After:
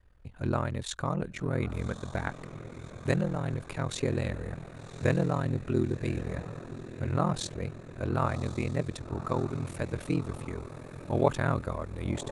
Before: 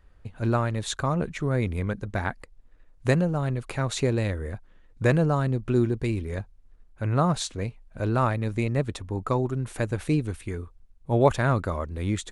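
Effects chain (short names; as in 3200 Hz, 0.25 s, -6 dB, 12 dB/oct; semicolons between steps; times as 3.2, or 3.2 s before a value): diffused feedback echo 1.137 s, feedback 60%, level -12.5 dB; ring modulator 21 Hz; gain -2.5 dB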